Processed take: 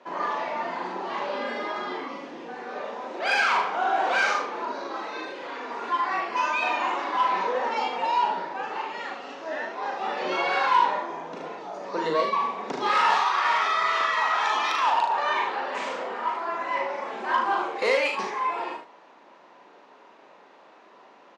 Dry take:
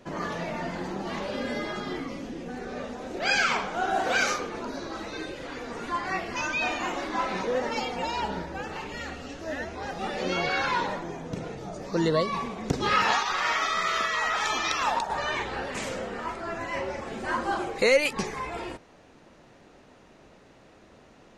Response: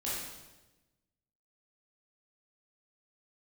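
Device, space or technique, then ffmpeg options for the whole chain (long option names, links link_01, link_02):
intercom: -filter_complex "[0:a]highpass=310,lowpass=4100,equalizer=frequency=980:width_type=o:width=0.51:gain=9,asoftclip=type=tanh:threshold=-17dB,highpass=frequency=130:width=0.5412,highpass=frequency=130:width=1.3066,highpass=frequency=250:poles=1,asplit=2[link_01][link_02];[link_02]adelay=43,volume=-10.5dB[link_03];[link_01][link_03]amix=inputs=2:normalize=0,aecho=1:1:38|74:0.562|0.447"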